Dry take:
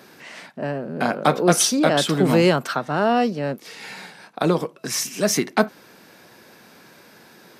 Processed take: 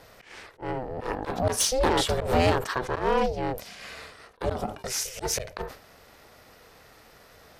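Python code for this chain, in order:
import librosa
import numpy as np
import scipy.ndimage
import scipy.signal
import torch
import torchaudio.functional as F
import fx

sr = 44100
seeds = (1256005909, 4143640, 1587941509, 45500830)

y = x * np.sin(2.0 * np.pi * 260.0 * np.arange(len(x)) / sr)
y = fx.peak_eq(y, sr, hz=470.0, db=2.5, octaves=1.1)
y = fx.clip_asym(y, sr, top_db=-15.5, bottom_db=-8.5)
y = fx.auto_swell(y, sr, attack_ms=126.0)
y = fx.sustainer(y, sr, db_per_s=130.0)
y = F.gain(torch.from_numpy(y), -2.0).numpy()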